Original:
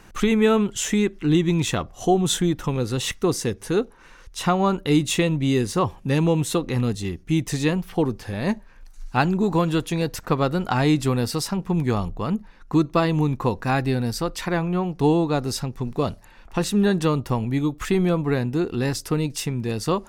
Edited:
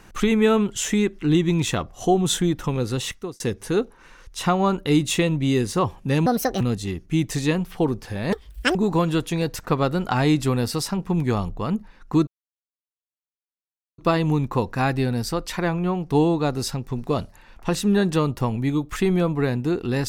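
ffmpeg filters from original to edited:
ffmpeg -i in.wav -filter_complex "[0:a]asplit=7[link_01][link_02][link_03][link_04][link_05][link_06][link_07];[link_01]atrim=end=3.4,asetpts=PTS-STARTPTS,afade=type=out:start_time=2.94:duration=0.46[link_08];[link_02]atrim=start=3.4:end=6.264,asetpts=PTS-STARTPTS,afade=type=in:duration=0.004:curve=hsin[link_09];[link_03]atrim=start=6.26:end=6.78,asetpts=PTS-STARTPTS,asetrate=66591,aresample=44100[link_10];[link_04]atrim=start=6.776:end=8.504[link_11];[link_05]atrim=start=8.5:end=9.35,asetpts=PTS-STARTPTS,asetrate=87759,aresample=44100[link_12];[link_06]atrim=start=9.346:end=12.87,asetpts=PTS-STARTPTS,afade=type=out:start_time=3.52:duration=0.004:curve=hsin,apad=pad_dur=1.71[link_13];[link_07]atrim=start=12.87,asetpts=PTS-STARTPTS,afade=type=in:duration=0.004:curve=hsin[link_14];[link_08][link_09]concat=n=2:v=0:a=1[link_15];[link_15][link_10]acrossfade=duration=0.004:curve1=hsin:curve2=hsin[link_16];[link_16][link_11]acrossfade=duration=0.004:curve1=hsin:curve2=hsin[link_17];[link_17][link_12]acrossfade=duration=0.004:curve1=hsin:curve2=hsin[link_18];[link_13][link_14]concat=n=2:v=0:a=1[link_19];[link_18][link_19]acrossfade=duration=0.004:curve1=hsin:curve2=hsin" out.wav

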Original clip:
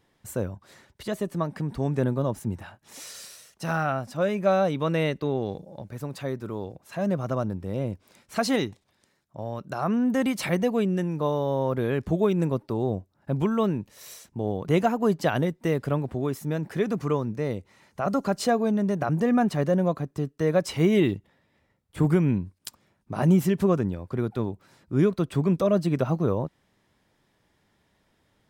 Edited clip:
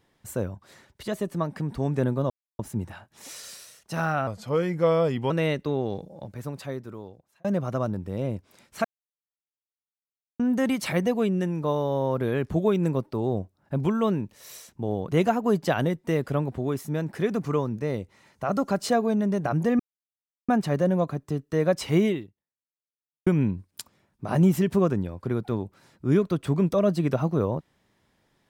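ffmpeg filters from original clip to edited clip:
ffmpeg -i in.wav -filter_complex "[0:a]asplit=9[link_01][link_02][link_03][link_04][link_05][link_06][link_07][link_08][link_09];[link_01]atrim=end=2.3,asetpts=PTS-STARTPTS,afade=type=out:start_time=2.296:duration=0.004:curve=hsin,apad=pad_dur=0.29[link_10];[link_02]atrim=start=2.3:end=3.984,asetpts=PTS-STARTPTS,afade=type=in:duration=0.004:curve=hsin[link_11];[link_03]atrim=start=3.98:end=4.87,asetpts=PTS-STARTPTS,asetrate=37926,aresample=44100,atrim=end_sample=45638,asetpts=PTS-STARTPTS[link_12];[link_04]atrim=start=4.866:end=7.01,asetpts=PTS-STARTPTS,afade=type=out:start_time=1.144:duration=1[link_13];[link_05]atrim=start=7.01:end=8.41,asetpts=PTS-STARTPTS,afade=type=in:duration=0.004:curve=hsin,afade=type=out:start_time=1.396:duration=0.004:curve=hsin[link_14];[link_06]atrim=start=8.41:end=9.96,asetpts=PTS-STARTPTS,volume=0[link_15];[link_07]atrim=start=9.96:end=19.36,asetpts=PTS-STARTPTS,afade=type=in:duration=0.004:curve=hsin,afade=type=out:start_time=9.396:duration=0.004:curve=hsin,apad=pad_dur=0.69[link_16];[link_08]atrim=start=19.36:end=22.14,asetpts=PTS-STARTPTS,afade=type=in:duration=0.004:curve=hsin,afade=type=out:start_time=1.56:duration=1.22:curve=exp[link_17];[link_09]atrim=start=22.14,asetpts=PTS-STARTPTS,afade=type=in:duration=0.004:curve=hsin[link_18];[link_10][link_11]concat=n=2:v=0:a=1[link_19];[link_19][link_12]acrossfade=duration=0.004:curve1=hsin:curve2=hsin[link_20];[link_13][link_14][link_15][link_16][link_17][link_18]concat=n=6:v=0:a=1[link_21];[link_20][link_21]acrossfade=duration=0.004:curve1=hsin:curve2=hsin" out.wav

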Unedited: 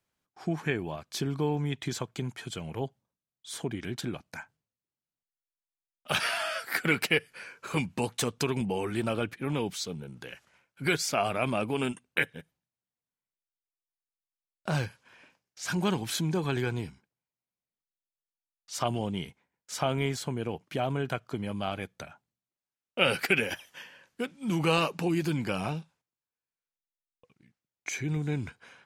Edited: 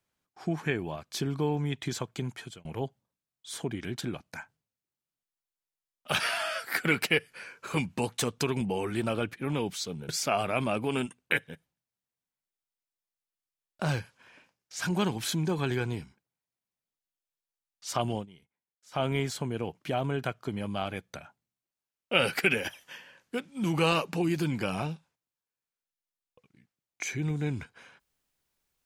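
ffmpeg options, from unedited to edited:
ffmpeg -i in.wav -filter_complex "[0:a]asplit=5[link_01][link_02][link_03][link_04][link_05];[link_01]atrim=end=2.65,asetpts=PTS-STARTPTS,afade=type=out:start_time=2.37:duration=0.28[link_06];[link_02]atrim=start=2.65:end=10.092,asetpts=PTS-STARTPTS,afade=type=in:duration=0.004:curve=hsin[link_07];[link_03]atrim=start=10.948:end=19.12,asetpts=PTS-STARTPTS,afade=type=out:start_time=8.042:duration=0.13:curve=qsin:silence=0.105925[link_08];[link_04]atrim=start=19.12:end=19.77,asetpts=PTS-STARTPTS,volume=-19.5dB[link_09];[link_05]atrim=start=19.77,asetpts=PTS-STARTPTS,afade=type=in:duration=0.13:curve=qsin:silence=0.105925[link_10];[link_06][link_07]concat=n=2:v=0:a=1[link_11];[link_08][link_09][link_10]concat=n=3:v=0:a=1[link_12];[link_11][link_12]acrossfade=duration=0.004:curve1=hsin:curve2=hsin" out.wav

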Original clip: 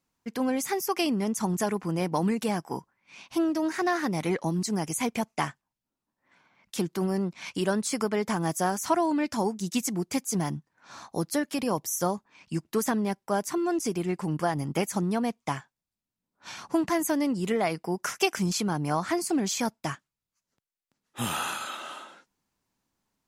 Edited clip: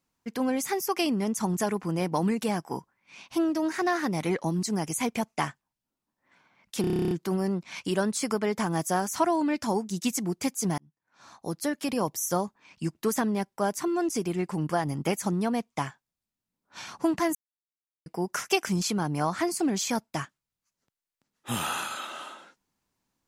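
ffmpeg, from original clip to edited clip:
ffmpeg -i in.wav -filter_complex "[0:a]asplit=14[link_01][link_02][link_03][link_04][link_05][link_06][link_07][link_08][link_09][link_10][link_11][link_12][link_13][link_14];[link_01]atrim=end=6.842[link_15];[link_02]atrim=start=6.808:end=6.842[link_16];[link_03]atrim=start=6.808:end=6.842[link_17];[link_04]atrim=start=6.808:end=6.842[link_18];[link_05]atrim=start=6.808:end=6.842[link_19];[link_06]atrim=start=6.808:end=6.842[link_20];[link_07]atrim=start=6.808:end=6.842[link_21];[link_08]atrim=start=6.808:end=6.842[link_22];[link_09]atrim=start=6.808:end=6.842[link_23];[link_10]atrim=start=6.808:end=6.842[link_24];[link_11]atrim=start=6.808:end=10.48,asetpts=PTS-STARTPTS,afade=type=out:start_time=3.668:duration=0.004:curve=hsin[link_25];[link_12]atrim=start=10.48:end=17.05,asetpts=PTS-STARTPTS,afade=type=in:duration=1.09,afade=type=out:start_time=6.566:duration=0.004:curve=hsin[link_26];[link_13]atrim=start=17.05:end=17.76,asetpts=PTS-STARTPTS,volume=0[link_27];[link_14]atrim=start=17.76,asetpts=PTS-STARTPTS,afade=type=in:duration=0.004:curve=hsin[link_28];[link_15][link_16]acrossfade=duration=0.004:curve1=hsin:curve2=hsin[link_29];[link_29][link_17]acrossfade=duration=0.004:curve1=hsin:curve2=hsin[link_30];[link_30][link_18]acrossfade=duration=0.004:curve1=hsin:curve2=hsin[link_31];[link_31][link_19]acrossfade=duration=0.004:curve1=hsin:curve2=hsin[link_32];[link_32][link_20]acrossfade=duration=0.004:curve1=hsin:curve2=hsin[link_33];[link_33][link_21]acrossfade=duration=0.004:curve1=hsin:curve2=hsin[link_34];[link_34][link_22]acrossfade=duration=0.004:curve1=hsin:curve2=hsin[link_35];[link_35][link_23]acrossfade=duration=0.004:curve1=hsin:curve2=hsin[link_36];[link_36][link_24]acrossfade=duration=0.004:curve1=hsin:curve2=hsin[link_37];[link_25][link_26][link_27][link_28]concat=n=4:v=0:a=1[link_38];[link_37][link_38]acrossfade=duration=0.004:curve1=hsin:curve2=hsin" out.wav

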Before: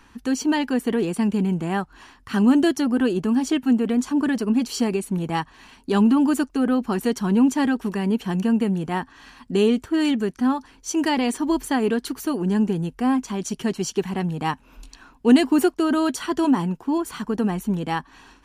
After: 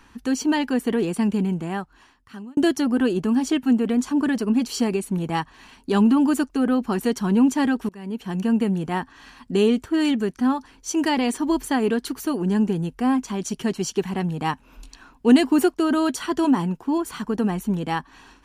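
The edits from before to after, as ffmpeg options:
ffmpeg -i in.wav -filter_complex "[0:a]asplit=3[link_01][link_02][link_03];[link_01]atrim=end=2.57,asetpts=PTS-STARTPTS,afade=type=out:start_time=1.31:duration=1.26[link_04];[link_02]atrim=start=2.57:end=7.89,asetpts=PTS-STARTPTS,afade=type=in:duration=0.004:curve=hsin,afade=type=out:start_time=5.316:duration=0.004:curve=hsin:silence=0.0749894[link_05];[link_03]atrim=start=7.89,asetpts=PTS-STARTPTS,afade=type=in:duration=0.66:silence=0.0749894[link_06];[link_04][link_05][link_06]concat=n=3:v=0:a=1" out.wav

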